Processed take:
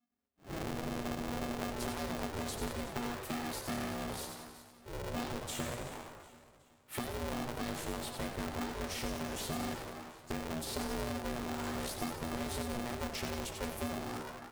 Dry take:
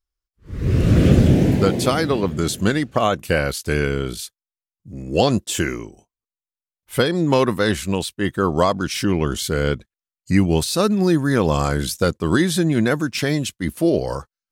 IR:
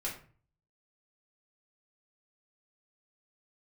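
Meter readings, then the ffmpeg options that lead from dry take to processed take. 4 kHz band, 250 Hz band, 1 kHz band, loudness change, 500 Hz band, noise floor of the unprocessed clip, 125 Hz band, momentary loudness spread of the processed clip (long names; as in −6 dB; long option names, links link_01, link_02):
−16.0 dB, −20.0 dB, −15.0 dB, −19.5 dB, −20.5 dB, below −85 dBFS, −23.5 dB, 7 LU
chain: -filter_complex "[0:a]equalizer=frequency=6400:width_type=o:width=2.7:gain=-10,aeval=exprs='clip(val(0),-1,0.0596)':channel_layout=same,acompressor=threshold=-23dB:ratio=6,asplit=7[link_01][link_02][link_03][link_04][link_05][link_06][link_07];[link_02]adelay=88,afreqshift=140,volume=-7.5dB[link_08];[link_03]adelay=176,afreqshift=280,volume=-13.2dB[link_09];[link_04]adelay=264,afreqshift=420,volume=-18.9dB[link_10];[link_05]adelay=352,afreqshift=560,volume=-24.5dB[link_11];[link_06]adelay=440,afreqshift=700,volume=-30.2dB[link_12];[link_07]adelay=528,afreqshift=840,volume=-35.9dB[link_13];[link_01][link_08][link_09][link_10][link_11][link_12][link_13]amix=inputs=7:normalize=0,asplit=2[link_14][link_15];[1:a]atrim=start_sample=2205[link_16];[link_15][link_16]afir=irnorm=-1:irlink=0,volume=-9dB[link_17];[link_14][link_17]amix=inputs=2:normalize=0,acrossover=split=210|3900[link_18][link_19][link_20];[link_18]acompressor=threshold=-28dB:ratio=4[link_21];[link_19]acompressor=threshold=-38dB:ratio=4[link_22];[link_20]acompressor=threshold=-38dB:ratio=4[link_23];[link_21][link_22][link_23]amix=inputs=3:normalize=0,asplit=2[link_24][link_25];[link_25]aecho=0:1:372|744|1116|1488:0.178|0.0729|0.0299|0.0123[link_26];[link_24][link_26]amix=inputs=2:normalize=0,flanger=delay=5.6:depth=2.9:regen=-61:speed=0.45:shape=sinusoidal,bass=frequency=250:gain=-7,treble=frequency=4000:gain=0,aeval=exprs='val(0)*sgn(sin(2*PI*240*n/s))':channel_layout=same"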